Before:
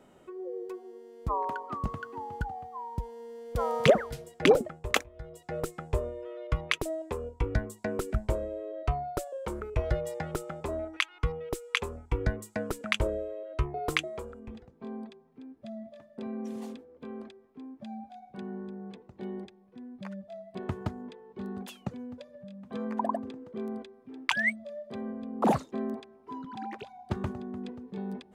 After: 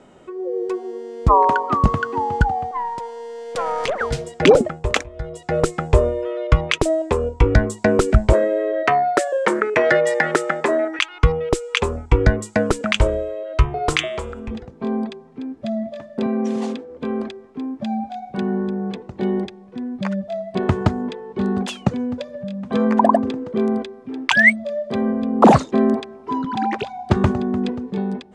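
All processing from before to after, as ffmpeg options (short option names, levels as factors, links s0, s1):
-filter_complex "[0:a]asettb=1/sr,asplit=3[s0][s1][s2];[s0]atrim=end=2.714[s3];[s1]atrim=start=2.71:end=4.01,asetpts=PTS-STARTPTS,afade=t=in:d=0.004:c=qsin,afade=t=out:st=1.296:d=0.004:c=qsin,highpass=540,acompressor=threshold=0.02:ratio=5:attack=3.2:release=140:knee=1:detection=peak,aeval=exprs='(tanh(28.2*val(0)+0.45)-tanh(0.45))/28.2':c=same[s4];[s2]atrim=start=4.006[s5];[s3][s4]acrossfade=d=0.004:c1=hsin:c2=qsin[s6];[s6][s5]acrossfade=d=0.004:c1=qsin:c2=hsin,asettb=1/sr,asplit=3[s7][s8][s9];[s7]atrim=end=8.334[s10];[s8]atrim=start=8.33:end=10.99,asetpts=PTS-STARTPTS,afade=t=in:d=0.004:c=qsin,afade=t=out:st=2.656:d=0.004:c=qsin,highpass=f=210:w=0.5412,highpass=f=210:w=1.3066,equalizer=f=1800:t=o:w=0.53:g=14[s11];[s9]atrim=start=10.986[s12];[s10][s11]acrossfade=d=0.004:c1=hsin:c2=qsin[s13];[s13][s12]acrossfade=d=0.004:c1=qsin:c2=hsin,asettb=1/sr,asplit=3[s14][s15][s16];[s14]atrim=end=12.964[s17];[s15]atrim=start=12.96:end=14.51,asetpts=PTS-STARTPTS,afade=t=in:d=0.004:c=qsin,afade=t=out:st=1.546:d=0.004:c=qsin,equalizer=f=310:t=o:w=2.7:g=-6,bandreject=f=120.7:t=h:w=4,bandreject=f=241.4:t=h:w=4,bandreject=f=362.1:t=h:w=4,bandreject=f=482.8:t=h:w=4,bandreject=f=603.5:t=h:w=4,bandreject=f=724.2:t=h:w=4,bandreject=f=844.9:t=h:w=4,bandreject=f=965.6:t=h:w=4,bandreject=f=1086.3:t=h:w=4,bandreject=f=1207:t=h:w=4,bandreject=f=1327.7:t=h:w=4,bandreject=f=1448.4:t=h:w=4,bandreject=f=1569.1:t=h:w=4,bandreject=f=1689.8:t=h:w=4,bandreject=f=1810.5:t=h:w=4,bandreject=f=1931.2:t=h:w=4,bandreject=f=2051.9:t=h:w=4,bandreject=f=2172.6:t=h:w=4,bandreject=f=2293.3:t=h:w=4,bandreject=f=2414:t=h:w=4,bandreject=f=2534.7:t=h:w=4,bandreject=f=2655.4:t=h:w=4,bandreject=f=2776.1:t=h:w=4,bandreject=f=2896.8:t=h:w=4,bandreject=f=3017.5:t=h:w=4,bandreject=f=3138.2:t=h:w=4,bandreject=f=3258.9:t=h:w=4,bandreject=f=3379.6:t=h:w=4,bandreject=f=3500.3:t=h:w=4,bandreject=f=3621:t=h:w=4,bandreject=f=3741.7:t=h:w=4,acompressor=mode=upward:threshold=0.00891:ratio=2.5:attack=3.2:release=140:knee=2.83:detection=peak[s18];[s16]atrim=start=14.506[s19];[s17][s18]acrossfade=d=0.004:c1=hsin:c2=qsin[s20];[s20][s19]acrossfade=d=0.004:c1=qsin:c2=hsin,asettb=1/sr,asplit=3[s21][s22][s23];[s21]atrim=end=16.264[s24];[s22]atrim=start=16.26:end=16.9,asetpts=PTS-STARTPTS,afade=t=in:d=0.004:c=qsin,afade=t=out:st=0.636:d=0.004:c=qsin,highpass=f=180:p=1,highshelf=f=10000:g=-8.5[s25];[s23]atrim=start=16.896[s26];[s24][s25]acrossfade=d=0.004:c1=hsin:c2=qsin[s27];[s27][s26]acrossfade=d=0.004:c1=qsin:c2=hsin,lowpass=f=8500:w=0.5412,lowpass=f=8500:w=1.3066,dynaudnorm=f=170:g=7:m=2.37,alimiter=level_in=3.35:limit=0.891:release=50:level=0:latency=1,volume=0.891"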